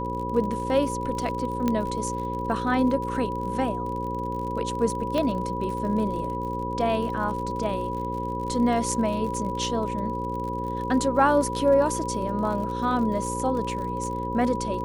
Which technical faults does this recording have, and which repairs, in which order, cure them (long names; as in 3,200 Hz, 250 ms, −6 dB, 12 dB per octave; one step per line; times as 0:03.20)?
mains buzz 60 Hz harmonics 9 −32 dBFS
surface crackle 52 per second −33 dBFS
whistle 980 Hz −30 dBFS
0:01.68: click −12 dBFS
0:05.18: click −15 dBFS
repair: click removal
hum removal 60 Hz, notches 9
notch filter 980 Hz, Q 30